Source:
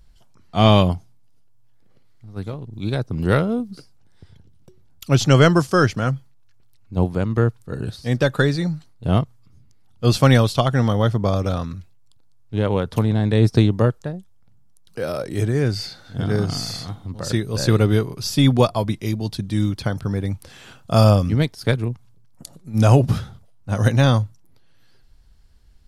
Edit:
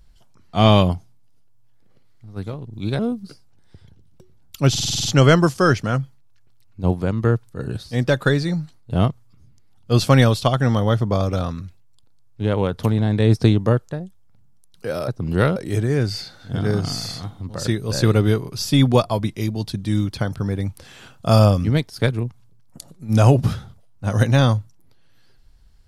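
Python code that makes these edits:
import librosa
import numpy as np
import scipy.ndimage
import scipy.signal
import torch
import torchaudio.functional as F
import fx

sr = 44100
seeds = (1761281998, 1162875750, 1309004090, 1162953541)

y = fx.edit(x, sr, fx.move(start_s=2.99, length_s=0.48, to_s=15.21),
    fx.stutter(start_s=5.18, slice_s=0.05, count=8), tone=tone)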